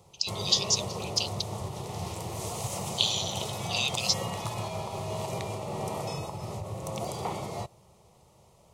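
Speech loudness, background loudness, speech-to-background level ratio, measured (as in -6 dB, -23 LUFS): -28.5 LUFS, -35.0 LUFS, 6.5 dB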